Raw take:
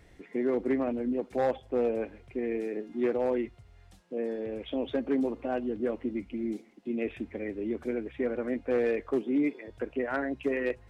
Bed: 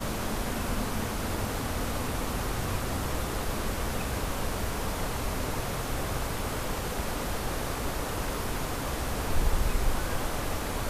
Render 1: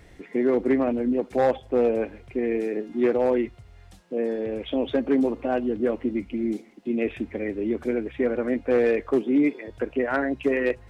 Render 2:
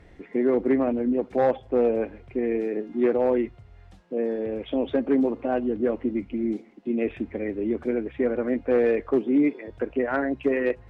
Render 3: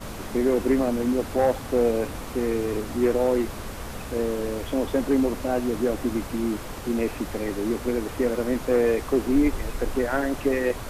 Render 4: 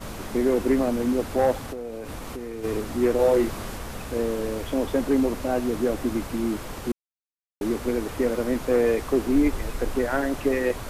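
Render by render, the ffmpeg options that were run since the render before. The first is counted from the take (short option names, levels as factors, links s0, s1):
-af "volume=2.11"
-af "aemphasis=mode=reproduction:type=75kf,bandreject=f=60:t=h:w=6,bandreject=f=120:t=h:w=6"
-filter_complex "[1:a]volume=0.631[s0];[0:a][s0]amix=inputs=2:normalize=0"
-filter_complex "[0:a]asplit=3[s0][s1][s2];[s0]afade=t=out:st=1.65:d=0.02[s3];[s1]acompressor=threshold=0.0316:ratio=10:attack=3.2:release=140:knee=1:detection=peak,afade=t=in:st=1.65:d=0.02,afade=t=out:st=2.63:d=0.02[s4];[s2]afade=t=in:st=2.63:d=0.02[s5];[s3][s4][s5]amix=inputs=3:normalize=0,asettb=1/sr,asplit=3[s6][s7][s8];[s6]atrim=end=3.164[s9];[s7]atrim=start=3.16:end=3.78,asetpts=PTS-STARTPTS,afade=t=in:d=0.004:c=qsin,afade=t=out:st=0.616:d=0.004:c=qsin,asplit=2[s10][s11];[s11]adelay=30,volume=0.75[s12];[s10][s12]amix=inputs=2:normalize=0,atrim=end_sample=27342[s13];[s8]atrim=start=3.776[s14];[s9][s13]acrossfade=d=0.004:c1=hsin:c2=qsin[s15];[s15][s14]acrossfade=d=0.004:c1=qsin:c2=hsin,asplit=3[s16][s17][s18];[s16]atrim=end=6.92,asetpts=PTS-STARTPTS,afade=t=out:st=6.916:d=0.004:c=hsin[s19];[s17]atrim=start=6.92:end=7.61,asetpts=PTS-STARTPTS,volume=0[s20];[s18]atrim=start=7.61,asetpts=PTS-STARTPTS,afade=t=in:d=0.004:c=hsin[s21];[s19][s20][s21]concat=n=3:v=0:a=1"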